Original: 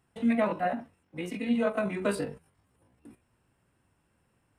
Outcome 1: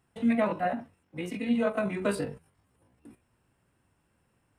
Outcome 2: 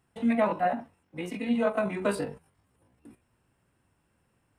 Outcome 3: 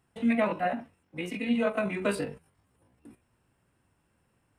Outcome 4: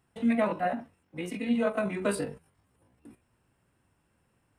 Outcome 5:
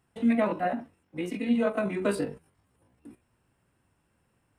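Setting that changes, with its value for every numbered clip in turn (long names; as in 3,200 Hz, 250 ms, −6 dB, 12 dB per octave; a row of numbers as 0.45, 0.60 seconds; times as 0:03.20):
dynamic equaliser, frequency: 110, 860, 2,500, 9,500, 320 Hertz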